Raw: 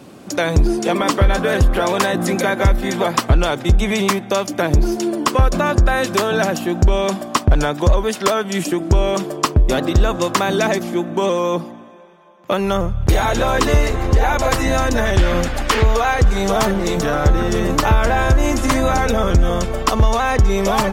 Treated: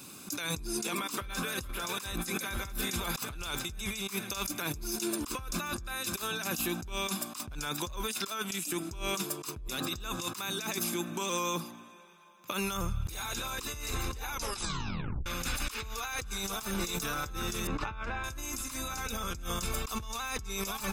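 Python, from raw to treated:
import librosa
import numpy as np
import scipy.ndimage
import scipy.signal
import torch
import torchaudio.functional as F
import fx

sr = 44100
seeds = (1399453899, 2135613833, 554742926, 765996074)

y = fx.echo_throw(x, sr, start_s=1.18, length_s=0.5, ms=450, feedback_pct=80, wet_db=-8.5)
y = fx.lowpass(y, sr, hz=2300.0, slope=12, at=(17.67, 18.24))
y = fx.edit(y, sr, fx.tape_stop(start_s=14.3, length_s=0.96), tone=tone)
y = scipy.signal.lfilter([1.0, -0.9], [1.0], y)
y = y + 0.52 * np.pad(y, (int(0.8 * sr / 1000.0), 0))[:len(y)]
y = fx.over_compress(y, sr, threshold_db=-36.0, ratio=-1.0)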